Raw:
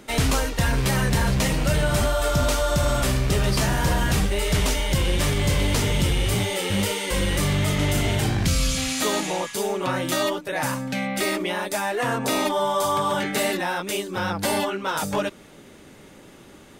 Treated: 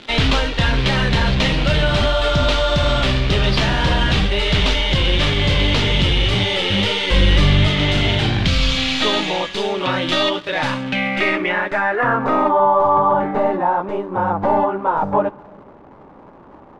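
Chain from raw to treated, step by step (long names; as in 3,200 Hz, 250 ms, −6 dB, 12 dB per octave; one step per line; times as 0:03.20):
stylus tracing distortion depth 0.065 ms
0:07.07–0:07.68: low-shelf EQ 140 Hz +8.5 dB
in parallel at −9.5 dB: bit reduction 5 bits
on the sum: surface crackle 360 per second −29 dBFS
low-pass filter sweep 3,500 Hz → 930 Hz, 0:10.66–0:12.78
on a send at −19 dB: convolution reverb RT60 1.3 s, pre-delay 3 ms
on the sum: level +1.5 dB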